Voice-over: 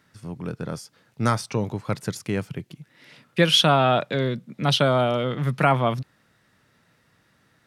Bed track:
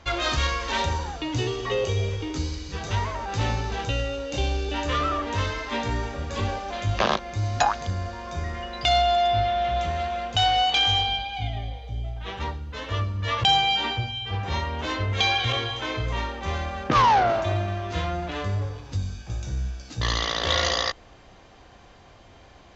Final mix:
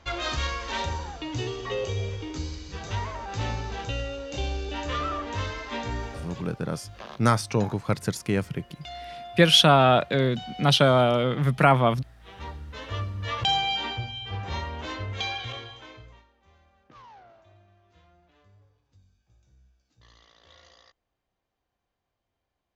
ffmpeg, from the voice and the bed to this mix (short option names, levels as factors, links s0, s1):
-filter_complex "[0:a]adelay=6000,volume=1.12[s0];[1:a]volume=3.35,afade=t=out:st=6.16:d=0.28:silence=0.177828,afade=t=in:st=12.18:d=0.45:silence=0.177828,afade=t=out:st=14.62:d=1.62:silence=0.0421697[s1];[s0][s1]amix=inputs=2:normalize=0"